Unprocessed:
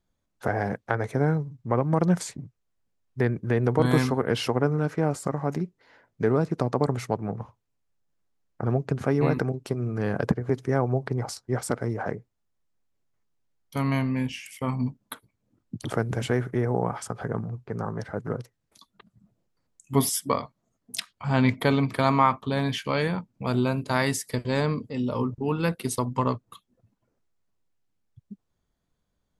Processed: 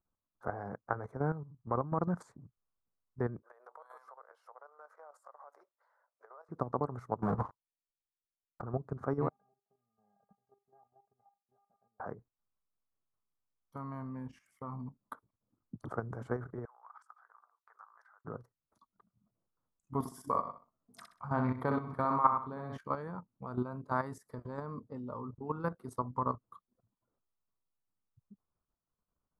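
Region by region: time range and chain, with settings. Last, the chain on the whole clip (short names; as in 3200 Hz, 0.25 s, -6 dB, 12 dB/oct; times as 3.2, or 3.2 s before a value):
3.42–6.49 elliptic high-pass 550 Hz, stop band 80 dB + compressor 3:1, threshold -47 dBFS + high shelf 7400 Hz +9 dB
7.22–8.62 low shelf 170 Hz -7 dB + sample leveller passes 5
9.29–12 CVSD 16 kbps + double band-pass 360 Hz, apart 1.7 oct + metallic resonator 400 Hz, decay 0.25 s, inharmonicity 0.002
16.65–18.25 HPF 1100 Hz 24 dB/oct + compressor 8:1, threshold -45 dBFS
19.99–22.78 dynamic EQ 2200 Hz, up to +4 dB, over -43 dBFS, Q 3.9 + feedback echo 63 ms, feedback 35%, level -4.5 dB + Doppler distortion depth 0.1 ms
whole clip: resonant high shelf 1800 Hz -13.5 dB, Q 3; level quantiser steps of 11 dB; gain -8.5 dB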